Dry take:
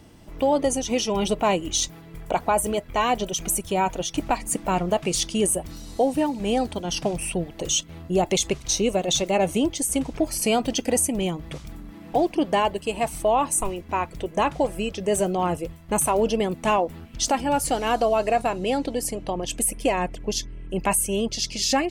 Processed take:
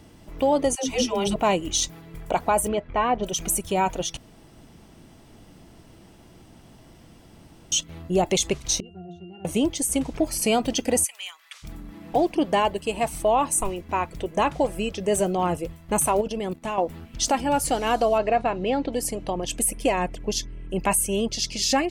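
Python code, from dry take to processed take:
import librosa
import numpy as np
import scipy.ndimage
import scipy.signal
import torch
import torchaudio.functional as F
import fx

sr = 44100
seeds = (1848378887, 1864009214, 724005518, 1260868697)

y = fx.dispersion(x, sr, late='lows', ms=137.0, hz=320.0, at=(0.75, 1.36))
y = fx.lowpass(y, sr, hz=fx.line((2.67, 3500.0), (3.22, 1500.0)), slope=12, at=(2.67, 3.22), fade=0.02)
y = fx.octave_resonator(y, sr, note='F', decay_s=0.45, at=(8.8, 9.45))
y = fx.highpass(y, sr, hz=1300.0, slope=24, at=(11.03, 11.62), fade=0.02)
y = fx.level_steps(y, sr, step_db=14, at=(16.21, 16.78))
y = fx.lowpass(y, sr, hz=3200.0, slope=12, at=(18.18, 18.93))
y = fx.edit(y, sr, fx.room_tone_fill(start_s=4.17, length_s=3.55), tone=tone)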